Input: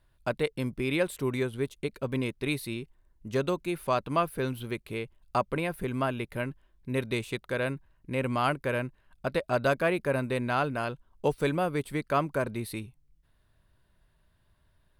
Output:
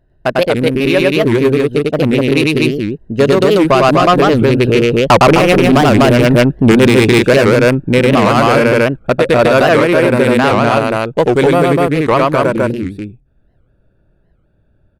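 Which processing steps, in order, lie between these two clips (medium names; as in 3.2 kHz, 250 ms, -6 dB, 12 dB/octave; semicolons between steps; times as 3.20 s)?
local Wiener filter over 41 samples; Doppler pass-by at 6.09 s, 16 m/s, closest 14 m; bass shelf 150 Hz -10 dB; in parallel at -2.5 dB: compression, threshold -45 dBFS, peak gain reduction 18.5 dB; on the sum: saturation -32 dBFS, distortion -10 dB; on a send: loudspeakers at several distances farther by 34 m -1 dB, 85 m -1 dB; on the sum: loudness maximiser +31.5 dB; warped record 78 rpm, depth 250 cents; trim -1 dB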